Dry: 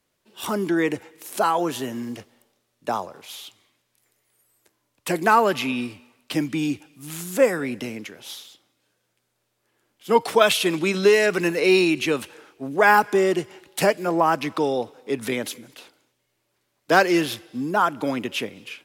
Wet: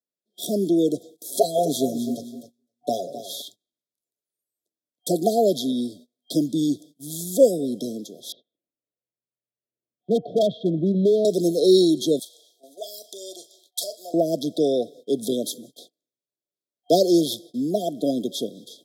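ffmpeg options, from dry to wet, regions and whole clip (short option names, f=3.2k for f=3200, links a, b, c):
-filter_complex "[0:a]asettb=1/sr,asplit=3[a][b][c];[a]atrim=end=1.284[d];[b]atrim=start=1.28:end=3.42,asetpts=PTS-STARTPTS,afade=t=in:d=0.004:c=qsin,afade=t=out:st=2.136:d=0.004:c=qsin,aecho=1:1:7.3:0.85,atrim=end_sample=94374,aecho=1:1:258|516|774:0.251|0.0678|0.0183,atrim=end_sample=94374[e];[c]atrim=start=3.416[f];[d][e]acrossfade=d=0.004:c1=hsin:c2=qsin[g];[g][f]acrossfade=d=0.004:c1=qsin:c2=hsin,asettb=1/sr,asplit=3[h][i][j];[h]atrim=end=8.324[k];[i]atrim=start=8.32:end=11.25,asetpts=PTS-STARTPTS,afade=t=in:d=0.004:c=qsin,afade=t=out:st=2.926:d=0.004:c=qsin,lowpass=f=2k:w=0.5412,lowpass=f=2k:w=1.3066,asubboost=boost=7.5:cutoff=140,asoftclip=type=hard:threshold=-16dB[l];[j]atrim=start=11.246[m];[k][l]acrossfade=d=0.004:c1=hsin:c2=qsin[n];[n][m]acrossfade=d=0.004:c1=qsin:c2=hsin,asettb=1/sr,asplit=3[o][p][q];[o]atrim=end=12.194[r];[p]atrim=start=12.19:end=14.14,asetpts=PTS-STARTPTS,afade=t=in:d=0.004:c=qsin,afade=t=out:st=1.946:d=0.004:c=qsin,acompressor=threshold=-23dB:ratio=2:attack=3.2:release=140:knee=1:detection=peak,highpass=f=1.3k:t=q:w=13,asplit=2[s][t];[t]adelay=40,volume=-12dB[u];[s][u]amix=inputs=2:normalize=0,atrim=end_sample=85995[v];[q]atrim=start=14.136[w];[r][v]acrossfade=d=0.004:c1=hsin:c2=qsin[x];[x][w]acrossfade=d=0.004:c1=qsin:c2=hsin,agate=range=-25dB:threshold=-45dB:ratio=16:detection=peak,highpass=f=150:w=0.5412,highpass=f=150:w=1.3066,afftfilt=real='re*(1-between(b*sr/4096,730,3200))':imag='im*(1-between(b*sr/4096,730,3200))':win_size=4096:overlap=0.75,volume=2.5dB"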